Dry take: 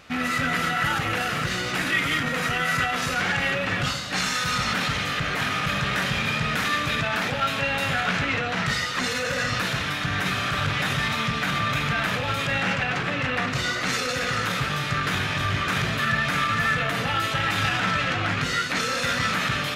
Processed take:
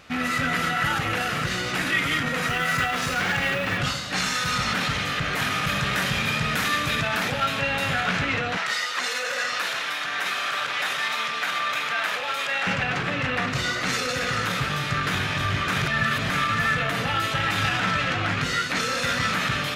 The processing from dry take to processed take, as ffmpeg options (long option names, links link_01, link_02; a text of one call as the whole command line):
ffmpeg -i in.wav -filter_complex "[0:a]asettb=1/sr,asplit=3[link_01][link_02][link_03];[link_01]atrim=end=2.494[link_04];[link_02]atrim=start=2.49:end=3.78,asetpts=PTS-STARTPTS,afade=type=in:duration=0.004:curve=qsin,afade=type=out:start_time=1.286:duration=0.004:curve=qsin,acrusher=bits=6:mode=log:mix=0:aa=0.000001[link_05];[link_03]atrim=start=3.776[link_06];[link_04][link_05]acrossfade=duration=0.004:curve1=hsin:curve2=qsin[link_07];[link_07][link_06]acrossfade=duration=0.004:curve1=qsin:curve2=hsin,asettb=1/sr,asplit=3[link_08][link_09][link_10];[link_08]atrim=end=5.334[link_11];[link_09]atrim=start=5.33:end=7.46,asetpts=PTS-STARTPTS,afade=type=in:duration=0.004:curve=qsin,afade=type=out:start_time=2.126:duration=0.004:curve=qsin,highshelf=frequency=8100:gain=7.5[link_12];[link_10]atrim=start=7.456[link_13];[link_11][link_12]acrossfade=duration=0.004:curve1=hsin:curve2=qsin[link_14];[link_14][link_13]acrossfade=duration=0.004:curve1=qsin:curve2=hsin,asettb=1/sr,asplit=3[link_15][link_16][link_17];[link_15]atrim=end=8.574[link_18];[link_16]atrim=start=8.57:end=12.67,asetpts=PTS-STARTPTS,afade=type=in:duration=0.004:curve=qsin,afade=type=out:start_time=4.096:duration=0.004:curve=qsin,highpass=560[link_19];[link_17]atrim=start=12.666[link_20];[link_18][link_19]acrossfade=duration=0.004:curve1=hsin:curve2=qsin[link_21];[link_21][link_20]acrossfade=duration=0.004:curve1=qsin:curve2=hsin,asplit=3[link_22][link_23][link_24];[link_22]atrim=end=15.862[link_25];[link_23]atrim=start=15.858:end=16.302,asetpts=PTS-STARTPTS,areverse[link_26];[link_24]atrim=start=16.298[link_27];[link_25][link_26]acrossfade=duration=0.004:curve1=hsin:curve2=hsin[link_28];[link_28][link_27]acrossfade=duration=0.004:curve1=hsin:curve2=hsin" out.wav